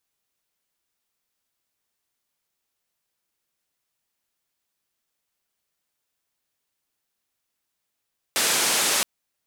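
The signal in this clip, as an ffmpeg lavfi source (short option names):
-f lavfi -i "anoisesrc=c=white:d=0.67:r=44100:seed=1,highpass=f=220,lowpass=f=9900,volume=-13.7dB"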